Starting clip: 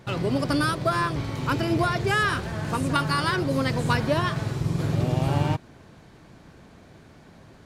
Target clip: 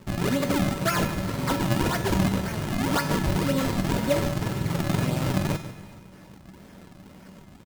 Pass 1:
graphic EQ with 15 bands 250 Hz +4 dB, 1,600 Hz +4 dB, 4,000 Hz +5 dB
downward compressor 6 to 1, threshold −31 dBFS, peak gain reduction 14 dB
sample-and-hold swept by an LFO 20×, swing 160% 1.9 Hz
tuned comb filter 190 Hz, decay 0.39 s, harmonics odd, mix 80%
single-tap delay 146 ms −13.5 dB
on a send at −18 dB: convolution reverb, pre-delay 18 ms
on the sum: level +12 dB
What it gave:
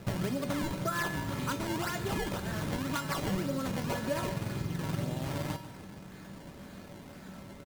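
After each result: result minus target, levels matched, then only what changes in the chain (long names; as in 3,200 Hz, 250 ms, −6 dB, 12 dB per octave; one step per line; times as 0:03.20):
downward compressor: peak gain reduction +9 dB; sample-and-hold swept by an LFO: distortion −7 dB
change: downward compressor 6 to 1, threshold −20 dBFS, peak gain reduction 5 dB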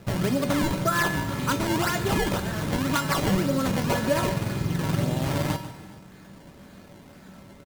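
sample-and-hold swept by an LFO: distortion −6 dB
change: sample-and-hold swept by an LFO 54×, swing 160% 1.9 Hz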